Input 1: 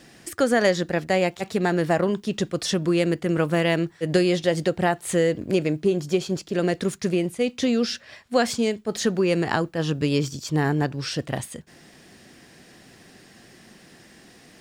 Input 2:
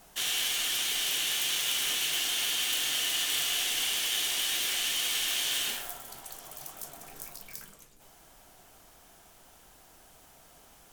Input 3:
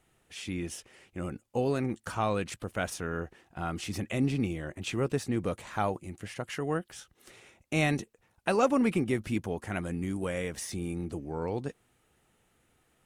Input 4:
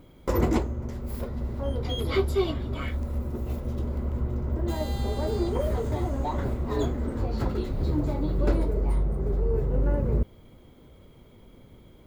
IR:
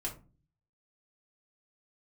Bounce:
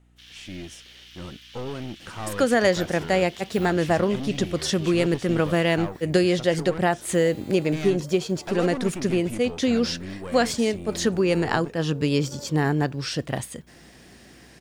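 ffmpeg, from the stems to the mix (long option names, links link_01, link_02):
-filter_complex "[0:a]adelay=2000,volume=0dB[link_01];[1:a]afwtdn=0.0224,volume=-15.5dB[link_02];[2:a]lowpass=7900,aeval=exprs='(tanh(28.2*val(0)+0.5)-tanh(0.5))/28.2':channel_layout=same,volume=1dB,asplit=2[link_03][link_04];[3:a]highpass=320,highshelf=frequency=8700:gain=9.5,adelay=2450,volume=-10.5dB[link_05];[link_04]apad=whole_len=640224[link_06];[link_05][link_06]sidechaincompress=threshold=-35dB:ratio=8:attack=16:release=1170[link_07];[link_01][link_02][link_03][link_07]amix=inputs=4:normalize=0,aeval=exprs='val(0)+0.00141*(sin(2*PI*60*n/s)+sin(2*PI*2*60*n/s)/2+sin(2*PI*3*60*n/s)/3+sin(2*PI*4*60*n/s)/4+sin(2*PI*5*60*n/s)/5)':channel_layout=same"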